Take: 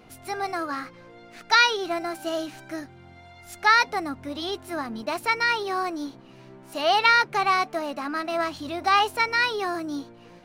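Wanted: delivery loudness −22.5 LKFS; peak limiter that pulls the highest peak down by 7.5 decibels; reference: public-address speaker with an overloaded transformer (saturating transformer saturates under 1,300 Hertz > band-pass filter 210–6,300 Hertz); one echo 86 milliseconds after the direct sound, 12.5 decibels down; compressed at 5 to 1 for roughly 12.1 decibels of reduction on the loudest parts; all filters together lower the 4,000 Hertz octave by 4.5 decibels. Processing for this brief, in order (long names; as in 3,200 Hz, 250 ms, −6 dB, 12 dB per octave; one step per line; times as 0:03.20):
parametric band 4,000 Hz −5 dB
downward compressor 5 to 1, threshold −28 dBFS
brickwall limiter −24.5 dBFS
single-tap delay 86 ms −12.5 dB
saturating transformer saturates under 1,300 Hz
band-pass filter 210–6,300 Hz
level +14.5 dB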